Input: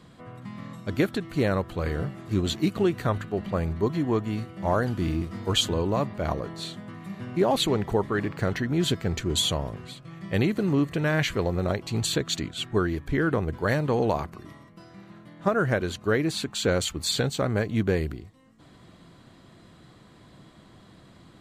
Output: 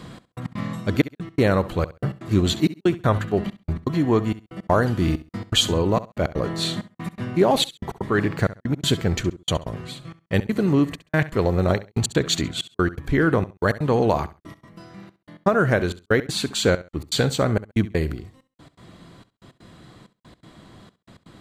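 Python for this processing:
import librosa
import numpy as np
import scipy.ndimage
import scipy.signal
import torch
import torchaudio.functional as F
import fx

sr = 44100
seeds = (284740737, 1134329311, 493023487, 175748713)

p1 = fx.rider(x, sr, range_db=10, speed_s=0.5)
p2 = x + (p1 * 10.0 ** (-1.0 / 20.0))
p3 = fx.step_gate(p2, sr, bpm=163, pattern='xx..x.xxx', floor_db=-60.0, edge_ms=4.5)
y = fx.echo_feedback(p3, sr, ms=67, feedback_pct=22, wet_db=-16.5)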